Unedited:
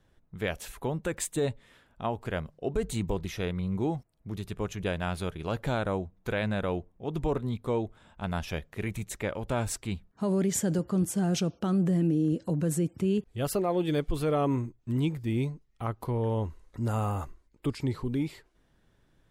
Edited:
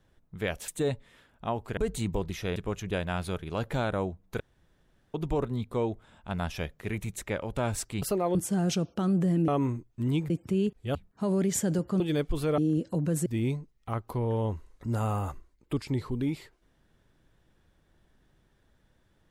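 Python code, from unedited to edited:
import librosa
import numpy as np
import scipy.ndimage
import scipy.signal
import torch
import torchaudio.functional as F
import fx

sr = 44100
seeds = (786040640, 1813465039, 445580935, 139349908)

y = fx.edit(x, sr, fx.cut(start_s=0.68, length_s=0.57),
    fx.cut(start_s=2.34, length_s=0.38),
    fx.cut(start_s=3.51, length_s=0.98),
    fx.room_tone_fill(start_s=6.33, length_s=0.74),
    fx.swap(start_s=9.95, length_s=1.05, other_s=13.46, other_length_s=0.33),
    fx.swap(start_s=12.13, length_s=0.68, other_s=14.37, other_length_s=0.82), tone=tone)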